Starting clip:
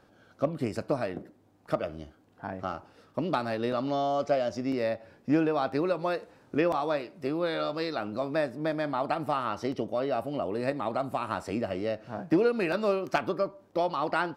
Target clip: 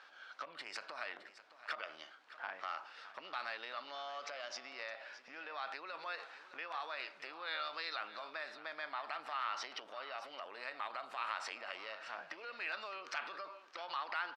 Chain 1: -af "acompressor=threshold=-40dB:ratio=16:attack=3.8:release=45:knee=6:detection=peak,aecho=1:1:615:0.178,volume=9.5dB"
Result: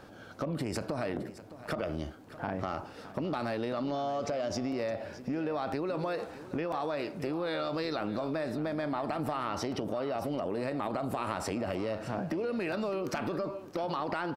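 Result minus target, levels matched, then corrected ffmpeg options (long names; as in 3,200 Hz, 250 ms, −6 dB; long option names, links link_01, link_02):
2,000 Hz band −9.0 dB
-af "acompressor=threshold=-40dB:ratio=16:attack=3.8:release=45:knee=6:detection=peak,asuperpass=centerf=2400:order=4:qfactor=0.69,aecho=1:1:615:0.178,volume=9.5dB"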